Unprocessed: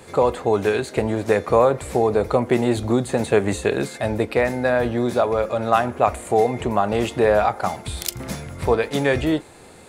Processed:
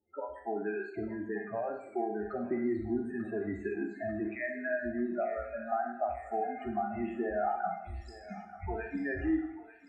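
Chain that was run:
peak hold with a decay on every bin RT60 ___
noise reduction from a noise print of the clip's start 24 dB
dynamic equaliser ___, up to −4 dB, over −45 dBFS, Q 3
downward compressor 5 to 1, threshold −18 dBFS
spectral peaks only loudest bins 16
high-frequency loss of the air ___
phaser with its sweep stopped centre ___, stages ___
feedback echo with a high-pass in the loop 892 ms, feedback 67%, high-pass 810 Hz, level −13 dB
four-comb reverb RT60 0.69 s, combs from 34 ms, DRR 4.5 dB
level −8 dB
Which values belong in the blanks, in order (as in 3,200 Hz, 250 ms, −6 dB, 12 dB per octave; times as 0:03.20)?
0.40 s, 2,800 Hz, 210 metres, 730 Hz, 8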